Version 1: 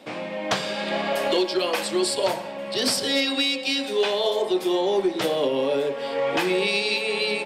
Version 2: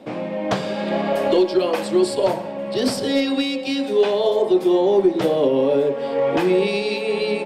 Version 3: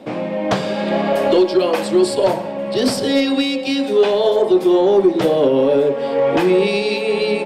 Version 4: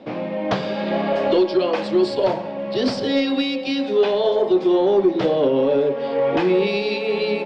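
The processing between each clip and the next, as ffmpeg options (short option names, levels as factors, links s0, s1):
-af "tiltshelf=f=970:g=7,volume=1.19"
-af "acontrast=38,volume=0.841"
-af "lowpass=f=5300:w=0.5412,lowpass=f=5300:w=1.3066,volume=0.668"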